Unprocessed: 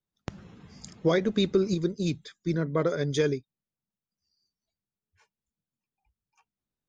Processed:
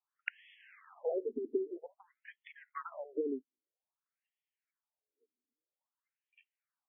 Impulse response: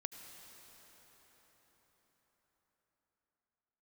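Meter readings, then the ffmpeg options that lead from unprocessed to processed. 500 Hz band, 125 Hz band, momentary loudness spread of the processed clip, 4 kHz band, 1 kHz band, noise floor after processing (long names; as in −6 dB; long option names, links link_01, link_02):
−10.5 dB, below −40 dB, 21 LU, below −20 dB, −9.5 dB, below −85 dBFS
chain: -af "highpass=frequency=110:width=0.5412,highpass=frequency=110:width=1.3066,asubboost=boost=7.5:cutoff=140,acompressor=threshold=-35dB:ratio=6,aeval=exprs='0.15*(cos(1*acos(clip(val(0)/0.15,-1,1)))-cos(1*PI/2))+0.0299*(cos(2*acos(clip(val(0)/0.15,-1,1)))-cos(2*PI/2))+0.0335*(cos(3*acos(clip(val(0)/0.15,-1,1)))-cos(3*PI/2))+0.00299*(cos(6*acos(clip(val(0)/0.15,-1,1)))-cos(6*PI/2))+0.0075*(cos(8*acos(clip(val(0)/0.15,-1,1)))-cos(8*PI/2))':channel_layout=same,afftfilt=real='re*between(b*sr/1024,310*pow(2500/310,0.5+0.5*sin(2*PI*0.51*pts/sr))/1.41,310*pow(2500/310,0.5+0.5*sin(2*PI*0.51*pts/sr))*1.41)':imag='im*between(b*sr/1024,310*pow(2500/310,0.5+0.5*sin(2*PI*0.51*pts/sr))/1.41,310*pow(2500/310,0.5+0.5*sin(2*PI*0.51*pts/sr))*1.41)':win_size=1024:overlap=0.75,volume=15.5dB"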